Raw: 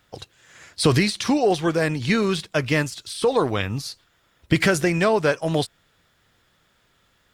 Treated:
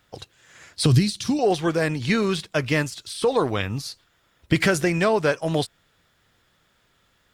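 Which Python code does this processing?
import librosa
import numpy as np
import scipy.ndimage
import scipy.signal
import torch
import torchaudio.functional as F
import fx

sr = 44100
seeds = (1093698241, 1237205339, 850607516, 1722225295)

y = fx.graphic_eq_10(x, sr, hz=(125, 500, 1000, 2000), db=(7, -8, -8, -9), at=(0.86, 1.39))
y = y * 10.0 ** (-1.0 / 20.0)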